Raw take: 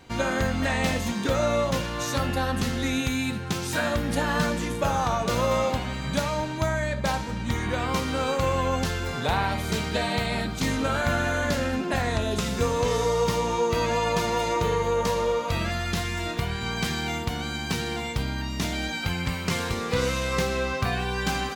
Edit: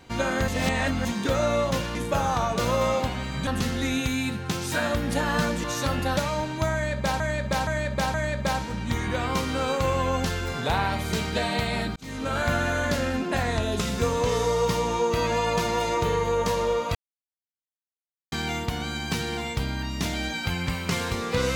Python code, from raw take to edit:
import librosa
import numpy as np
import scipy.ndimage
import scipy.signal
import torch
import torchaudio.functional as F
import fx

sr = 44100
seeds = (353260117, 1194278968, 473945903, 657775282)

y = fx.edit(x, sr, fx.reverse_span(start_s=0.48, length_s=0.57),
    fx.swap(start_s=1.95, length_s=0.53, other_s=4.65, other_length_s=1.52),
    fx.repeat(start_s=6.73, length_s=0.47, count=4),
    fx.fade_in_span(start_s=10.55, length_s=0.45),
    fx.silence(start_s=15.54, length_s=1.37), tone=tone)